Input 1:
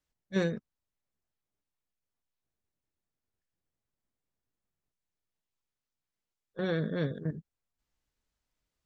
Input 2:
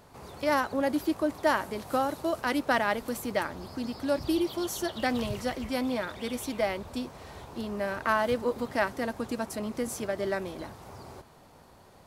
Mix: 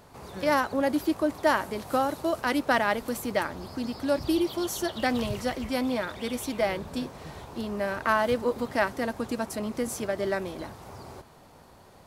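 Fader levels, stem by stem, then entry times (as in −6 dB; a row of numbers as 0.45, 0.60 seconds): −12.5, +2.0 decibels; 0.00, 0.00 seconds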